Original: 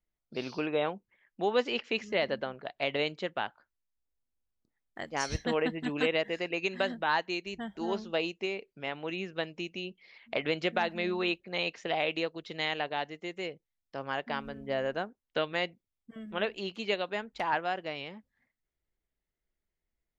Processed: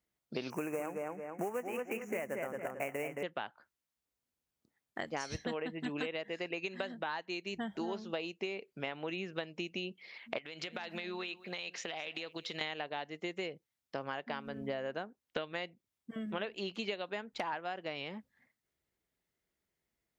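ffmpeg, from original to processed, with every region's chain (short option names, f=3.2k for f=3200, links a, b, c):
-filter_complex "[0:a]asettb=1/sr,asplit=3[a][b][c];[a]atrim=end=0.504[d];[b]atrim=start=0.5:end=3.23,asetpts=PTS-STARTPTS,afade=t=in:d=0.004:c=qsin,afade=t=out:st=2.726:d=0.004:c=qsin,acrusher=bits=3:mode=log:mix=0:aa=0.000001,asuperstop=centerf=4000:order=8:qfactor=1.1,asplit=2[e][f];[f]adelay=221,lowpass=f=3.7k:p=1,volume=-5dB,asplit=2[g][h];[h]adelay=221,lowpass=f=3.7k:p=1,volume=0.25,asplit=2[i][j];[j]adelay=221,lowpass=f=3.7k:p=1,volume=0.25[k];[e][g][i][k]amix=inputs=4:normalize=0,atrim=end_sample=120393[l];[c]atrim=start=3.226[m];[d][l]acrossfade=d=0.004:c1=hsin:c2=qsin[n];[n][m]acrossfade=d=0.004:c1=qsin:c2=hsin,asettb=1/sr,asplit=3[o][p][q];[o]atrim=end=10.384[r];[p]atrim=start=10.38:end=12.61,asetpts=PTS-STARTPTS,afade=t=in:d=0.004:c=qsin,afade=t=out:st=2.226:d=0.004:c=qsin,tiltshelf=f=1.4k:g=-5,acompressor=threshold=-40dB:ratio=12:attack=3.2:release=140:knee=1:detection=peak,aecho=1:1:215:0.1,atrim=end_sample=98343[s];[q]atrim=start=12.606[t];[r][s]acrossfade=d=0.004:c1=hsin:c2=qsin[u];[u][t]acrossfade=d=0.004:c1=qsin:c2=hsin,highpass=92,acompressor=threshold=-39dB:ratio=10,volume=4.5dB"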